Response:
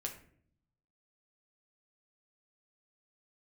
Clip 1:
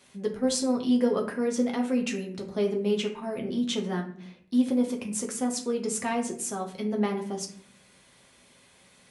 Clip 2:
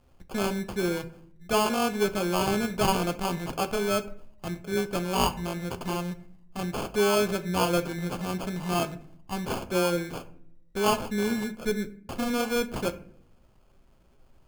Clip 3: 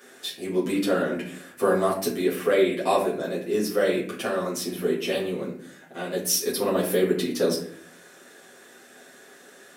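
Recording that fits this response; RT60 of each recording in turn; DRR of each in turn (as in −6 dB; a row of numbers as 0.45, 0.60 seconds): 1; 0.55, 0.60, 0.55 seconds; 0.5, 8.5, −8.0 decibels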